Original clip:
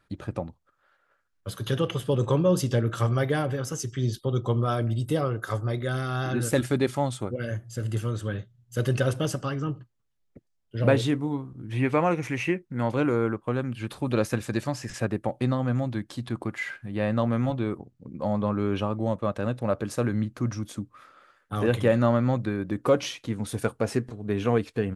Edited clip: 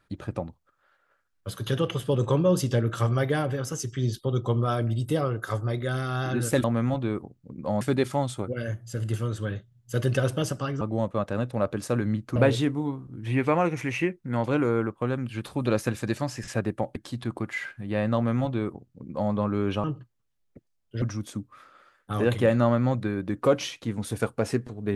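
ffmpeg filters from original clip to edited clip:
-filter_complex "[0:a]asplit=8[a][b][c][d][e][f][g][h];[a]atrim=end=6.642[i];[b]atrim=start=17.198:end=18.372[j];[c]atrim=start=6.638:end=9.642[k];[d]atrim=start=18.888:end=20.442[l];[e]atrim=start=10.818:end=15.422[m];[f]atrim=start=16.008:end=18.892[n];[g]atrim=start=9.638:end=10.822[o];[h]atrim=start=20.438[p];[i][j]acrossfade=d=0.004:c1=hsin:c2=hsin[q];[q][k]acrossfade=d=0.004:c1=hsin:c2=hsin[r];[r][l]acrossfade=d=0.004:c1=hsin:c2=hsin[s];[s][m]acrossfade=d=0.004:c1=hsin:c2=hsin[t];[t][n]acrossfade=d=0.004:c1=hsin:c2=hsin[u];[u][o]acrossfade=d=0.004:c1=hsin:c2=hsin[v];[v][p]acrossfade=d=0.004:c1=hsin:c2=hsin"

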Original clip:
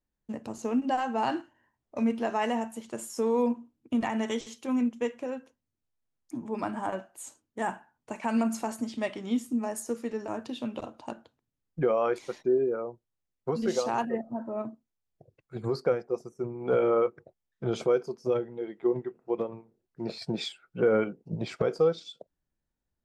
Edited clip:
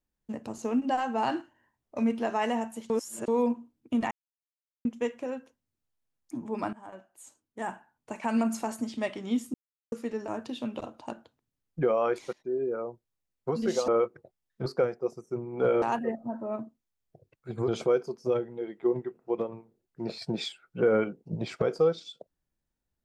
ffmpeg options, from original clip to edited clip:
-filter_complex "[0:a]asplit=13[a][b][c][d][e][f][g][h][i][j][k][l][m];[a]atrim=end=2.902[n];[b]atrim=start=2.898:end=3.282,asetpts=PTS-STARTPTS,areverse[o];[c]atrim=start=3.278:end=4.11,asetpts=PTS-STARTPTS,afade=t=out:st=0.828:d=0.004:c=hsin[p];[d]atrim=start=4.11:end=4.85,asetpts=PTS-STARTPTS,volume=0[q];[e]atrim=start=4.85:end=6.73,asetpts=PTS-STARTPTS,afade=t=in:d=0.004:c=hsin,afade=t=out:st=1.876:d=0.004:c=hsin:silence=0.125893[r];[f]atrim=start=6.73:end=9.54,asetpts=PTS-STARTPTS,afade=t=in:d=1.52:silence=0.125893,afade=t=out:st=2.806:d=0.004:c=hsin[s];[g]atrim=start=9.54:end=9.92,asetpts=PTS-STARTPTS,volume=0[t];[h]atrim=start=9.92:end=12.33,asetpts=PTS-STARTPTS,afade=t=in:d=0.004:c=hsin,afade=t=out:st=2.406:d=0.004:c=hsin:silence=0.105925[u];[i]atrim=start=12.33:end=13.882,asetpts=PTS-STARTPTS,afade=t=in:d=0.48:silence=0.105925[v];[j]atrim=start=16.898:end=17.682[w];[k]atrim=start=15.738:end=16.902[x];[l]atrim=start=13.878:end=15.742[y];[m]atrim=start=17.678[z];[n][o]acrossfade=d=0.004:c1=hsin:c2=hsin[aa];[p][q][r][s][t][u][v]concat=n=7:v=0:a=1[ab];[aa][ab]acrossfade=d=0.004:c1=hsin:c2=hsin[ac];[ac][w]acrossfade=d=0.004:c1=hsin:c2=hsin[ad];[ad][x]acrossfade=d=0.004:c1=hsin:c2=hsin[ae];[ae][y]acrossfade=d=0.004:c1=hsin:c2=hsin[af];[af][z]acrossfade=d=0.004:c1=hsin:c2=hsin"

